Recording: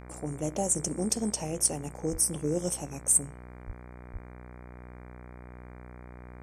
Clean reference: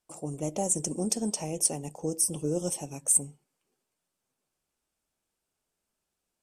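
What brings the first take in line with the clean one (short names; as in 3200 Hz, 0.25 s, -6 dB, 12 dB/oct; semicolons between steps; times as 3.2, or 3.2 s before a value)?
de-hum 61.4 Hz, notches 39; de-plosive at 2.11/3.66/4.12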